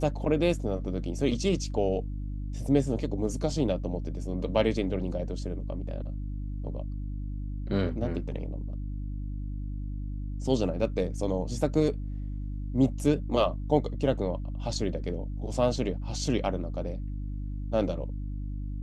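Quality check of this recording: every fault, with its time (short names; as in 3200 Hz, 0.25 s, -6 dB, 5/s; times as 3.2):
hum 50 Hz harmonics 6 -34 dBFS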